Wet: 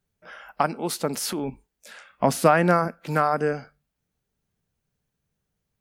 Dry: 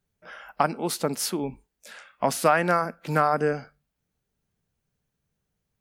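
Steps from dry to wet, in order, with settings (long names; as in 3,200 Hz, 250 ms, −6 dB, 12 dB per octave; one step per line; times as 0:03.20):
0:01.10–0:01.50: transient designer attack −4 dB, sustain +7 dB
0:02.09–0:02.88: low-shelf EQ 450 Hz +8.5 dB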